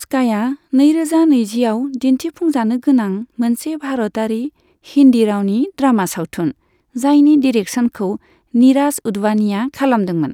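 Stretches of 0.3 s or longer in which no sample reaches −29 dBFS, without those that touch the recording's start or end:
0:04.48–0:04.88
0:06.51–0:06.96
0:08.16–0:08.54

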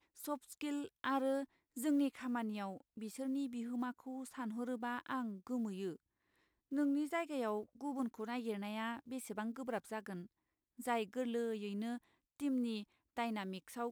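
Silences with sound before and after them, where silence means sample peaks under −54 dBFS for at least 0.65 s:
0:05.96–0:06.72

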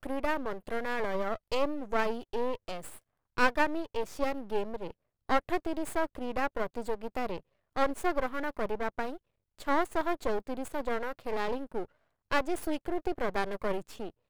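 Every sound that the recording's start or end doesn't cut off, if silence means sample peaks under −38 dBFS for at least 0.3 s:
0:03.37–0:04.91
0:05.29–0:07.38
0:07.76–0:09.16
0:09.59–0:11.85

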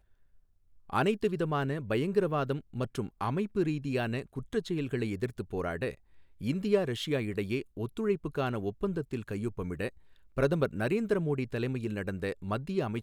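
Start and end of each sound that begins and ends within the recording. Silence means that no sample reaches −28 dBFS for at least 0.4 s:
0:00.93–0:05.89
0:06.45–0:09.88

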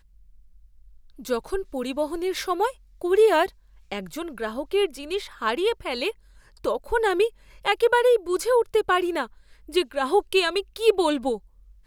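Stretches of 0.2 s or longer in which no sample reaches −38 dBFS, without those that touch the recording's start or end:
0:02.71–0:03.01
0:03.49–0:03.92
0:06.11–0:06.64
0:07.29–0:07.65
0:09.27–0:09.69

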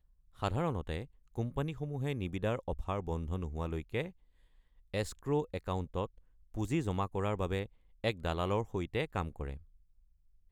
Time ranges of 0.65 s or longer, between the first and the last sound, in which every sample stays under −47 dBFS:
0:04.10–0:04.94

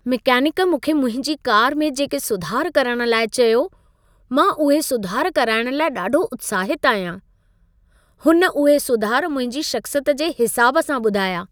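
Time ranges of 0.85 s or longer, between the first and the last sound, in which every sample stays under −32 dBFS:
0:07.18–0:08.25

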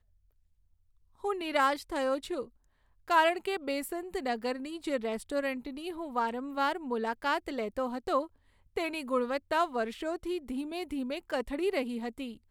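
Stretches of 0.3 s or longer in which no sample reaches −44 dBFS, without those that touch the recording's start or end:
0:02.45–0:03.08
0:08.26–0:08.76

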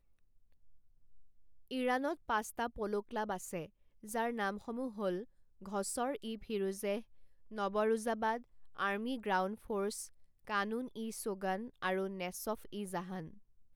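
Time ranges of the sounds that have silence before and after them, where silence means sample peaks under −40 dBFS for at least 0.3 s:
0:01.71–0:03.65
0:04.09–0:05.22
0:05.66–0:07.00
0:07.56–0:08.37
0:08.79–0:10.05
0:10.48–0:13.26

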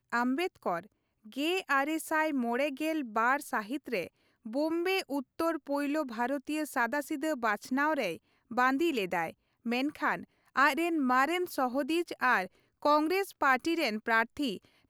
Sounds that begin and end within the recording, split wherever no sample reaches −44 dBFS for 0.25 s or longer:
0:01.26–0:04.07
0:04.46–0:08.16
0:08.51–0:09.30
0:09.66–0:10.24
0:10.56–0:12.47
0:12.82–0:14.57

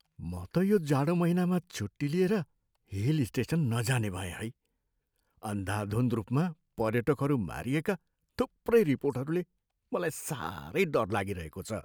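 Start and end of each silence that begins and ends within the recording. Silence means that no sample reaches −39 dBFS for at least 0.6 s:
0:04.50–0:05.43

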